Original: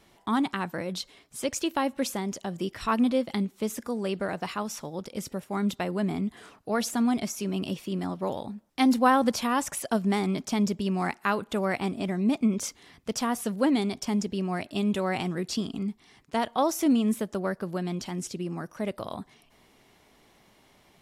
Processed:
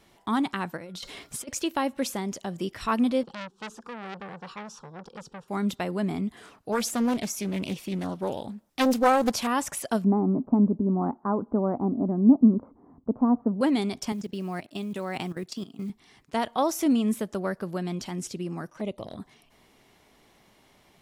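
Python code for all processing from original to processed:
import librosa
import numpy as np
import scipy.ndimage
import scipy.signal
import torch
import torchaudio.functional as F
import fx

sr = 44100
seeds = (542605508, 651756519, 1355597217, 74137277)

y = fx.over_compress(x, sr, threshold_db=-43.0, ratio=-1.0, at=(0.76, 1.47), fade=0.02)
y = fx.dmg_tone(y, sr, hz=1400.0, level_db=-66.0, at=(0.76, 1.47), fade=0.02)
y = fx.chain(y, sr, fx.air_absorb(metres=110.0),
    fx.fixed_phaser(hz=420.0, stages=8),
    fx.transformer_sat(knee_hz=2300.0), at=(3.23, 5.48))
y = fx.chain(y, sr, fx.high_shelf(hz=5300.0, db=4.5),
    fx.doppler_dist(depth_ms=0.57), at=(6.72, 9.47))
y = fx.chain(y, sr, fx.steep_lowpass(hz=1100.0, slope=36),
    fx.peak_eq(hz=260.0, db=10.5, octaves=0.58), at=(10.04, 13.61))
y = fx.chain(y, sr, fx.highpass(hz=100.0, slope=24),
    fx.level_steps(step_db=16),
    fx.quant_float(bits=4), at=(14.12, 15.9))
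y = fx.chain(y, sr, fx.lowpass(hz=8500.0, slope=12),
    fx.env_flanger(rest_ms=9.7, full_db=-29.5), at=(18.7, 19.2))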